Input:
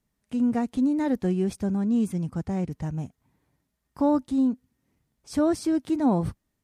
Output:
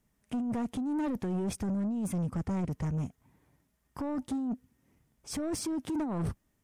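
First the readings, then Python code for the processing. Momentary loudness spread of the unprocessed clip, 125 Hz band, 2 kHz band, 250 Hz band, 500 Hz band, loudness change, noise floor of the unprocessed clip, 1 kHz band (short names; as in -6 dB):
9 LU, -3.5 dB, n/a, -8.0 dB, -10.0 dB, -8.0 dB, -79 dBFS, -8.5 dB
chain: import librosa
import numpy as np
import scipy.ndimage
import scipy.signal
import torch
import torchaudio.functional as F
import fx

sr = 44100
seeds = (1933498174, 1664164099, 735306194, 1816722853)

y = fx.peak_eq(x, sr, hz=4200.0, db=-5.5, octaves=0.44)
y = fx.over_compress(y, sr, threshold_db=-27.0, ratio=-1.0)
y = 10.0 ** (-28.0 / 20.0) * np.tanh(y / 10.0 ** (-28.0 / 20.0))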